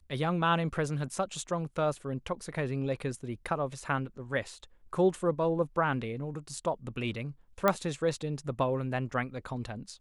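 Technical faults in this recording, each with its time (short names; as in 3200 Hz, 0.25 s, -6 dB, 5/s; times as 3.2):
7.68 pop -11 dBFS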